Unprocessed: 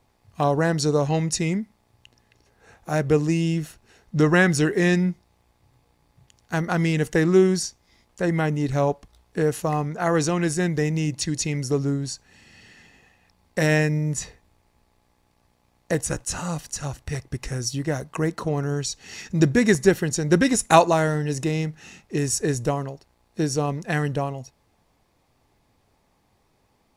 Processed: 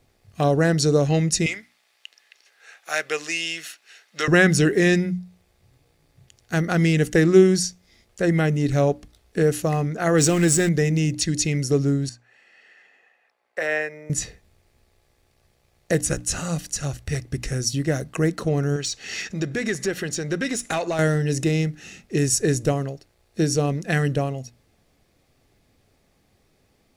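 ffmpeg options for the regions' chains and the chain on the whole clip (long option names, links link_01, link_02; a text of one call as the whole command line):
ffmpeg -i in.wav -filter_complex "[0:a]asettb=1/sr,asplit=3[link_01][link_02][link_03];[link_01]atrim=end=1.464[link_04];[link_02]atrim=start=1.46:end=4.28,asetpts=PTS-STARTPTS,afade=type=in:duration=0.004:curve=qsin,afade=type=out:start_time=2.816:duration=0.004:curve=qsin,highpass=870,equalizer=frequency=2700:width_type=o:width=2.4:gain=7.5[link_05];[link_03]atrim=start=4.276[link_06];[link_04][link_05]acrossfade=duration=0.004:curve1=hsin:curve2=qsin[link_07];[link_07][link_06]acrossfade=duration=0.004:curve1=qsin:curve2=hsin,asettb=1/sr,asplit=3[link_08][link_09][link_10];[link_08]atrim=end=10.184[link_11];[link_09]atrim=start=10.18:end=10.69,asetpts=PTS-STARTPTS,afade=type=in:duration=0.004:curve=qsin,afade=type=out:start_time=0.506:duration=0.004:curve=qsin,aeval=exprs='val(0)+0.5*0.0355*sgn(val(0))':channel_layout=same,equalizer=frequency=7800:width=5.4:gain=10.5[link_12];[link_10]atrim=start=10.686[link_13];[link_11][link_12]acrossfade=duration=0.004:curve1=hsin:curve2=qsin[link_14];[link_14][link_13]acrossfade=duration=0.004:curve1=qsin:curve2=hsin,asettb=1/sr,asplit=3[link_15][link_16][link_17];[link_15]atrim=end=12.094[link_18];[link_16]atrim=start=12.09:end=14.1,asetpts=PTS-STARTPTS,afade=type=in:duration=0.004:curve=qsin,afade=type=out:start_time=2.006:duration=0.004:curve=qsin,highpass=260,acrossover=split=510 2300:gain=0.0891 1 0.141[link_19][link_20][link_21];[link_19][link_20][link_21]amix=inputs=3:normalize=0[link_22];[link_17]atrim=start=14.096[link_23];[link_18][link_22]acrossfade=duration=0.004:curve1=hsin:curve2=qsin[link_24];[link_24][link_23]acrossfade=duration=0.004:curve1=qsin:curve2=hsin,asettb=1/sr,asplit=3[link_25][link_26][link_27];[link_25]atrim=end=18.764[link_28];[link_26]atrim=start=18.76:end=20.99,asetpts=PTS-STARTPTS,afade=type=in:duration=0.004:curve=qsin,afade=type=out:start_time=2.226:duration=0.004:curve=qsin,acompressor=threshold=-29dB:ratio=2.5:attack=3.2:release=140:knee=1:detection=peak,asplit=2[link_29][link_30];[link_30]highpass=frequency=720:poles=1,volume=12dB,asoftclip=type=tanh:threshold=-14.5dB[link_31];[link_29][link_31]amix=inputs=2:normalize=0,lowpass=frequency=3900:poles=1,volume=-6dB[link_32];[link_27]atrim=start=20.986[link_33];[link_28][link_32]acrossfade=duration=0.004:curve1=hsin:curve2=qsin[link_34];[link_34][link_33]acrossfade=duration=0.004:curve1=qsin:curve2=hsin,equalizer=frequency=950:width=2.7:gain=-12,bandreject=frequency=60:width_type=h:width=6,bandreject=frequency=120:width_type=h:width=6,bandreject=frequency=180:width_type=h:width=6,bandreject=frequency=240:width_type=h:width=6,bandreject=frequency=300:width_type=h:width=6,volume=3.5dB" out.wav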